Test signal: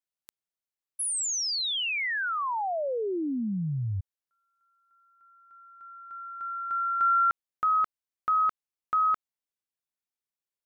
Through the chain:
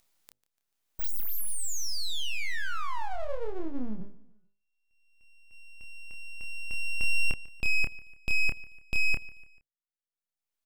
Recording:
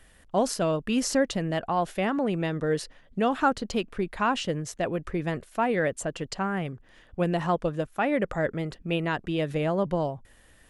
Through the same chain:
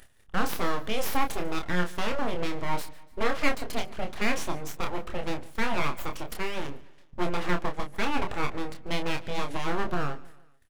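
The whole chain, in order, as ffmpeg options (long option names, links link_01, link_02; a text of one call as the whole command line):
ffmpeg -i in.wav -filter_complex "[0:a]agate=range=-24dB:threshold=-52dB:ratio=16:release=211:detection=peak,bandreject=frequency=50:width_type=h:width=6,bandreject=frequency=100:width_type=h:width=6,bandreject=frequency=150:width_type=h:width=6,bandreject=frequency=200:width_type=h:width=6,bandreject=frequency=250:width_type=h:width=6,bandreject=frequency=300:width_type=h:width=6,bandreject=frequency=350:width_type=h:width=6,bandreject=frequency=400:width_type=h:width=6,acompressor=mode=upward:threshold=-36dB:ratio=2.5:attack=2.5:release=791:knee=2.83:detection=peak,aeval=exprs='abs(val(0))':channel_layout=same,asplit=2[link_01][link_02];[link_02]adelay=28,volume=-6dB[link_03];[link_01][link_03]amix=inputs=2:normalize=0,aecho=1:1:146|292|438:0.0891|0.0428|0.0205" out.wav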